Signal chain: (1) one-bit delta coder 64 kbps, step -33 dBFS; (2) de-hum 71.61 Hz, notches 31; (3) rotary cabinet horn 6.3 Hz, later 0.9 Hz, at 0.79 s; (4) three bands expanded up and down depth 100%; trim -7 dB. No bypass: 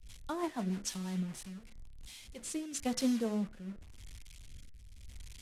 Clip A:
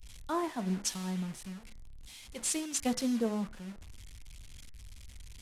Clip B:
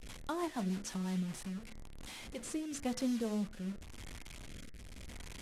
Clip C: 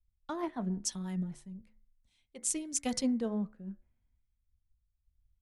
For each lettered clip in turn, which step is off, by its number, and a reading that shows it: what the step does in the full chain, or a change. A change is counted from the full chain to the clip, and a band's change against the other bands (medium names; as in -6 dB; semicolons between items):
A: 3, 8 kHz band +3.0 dB; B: 4, 8 kHz band -3.0 dB; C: 1, 8 kHz band +6.0 dB